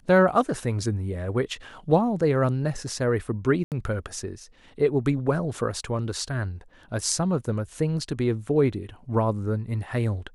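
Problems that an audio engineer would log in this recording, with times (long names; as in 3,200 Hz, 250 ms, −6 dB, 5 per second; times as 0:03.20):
0:03.64–0:03.72: drop-out 78 ms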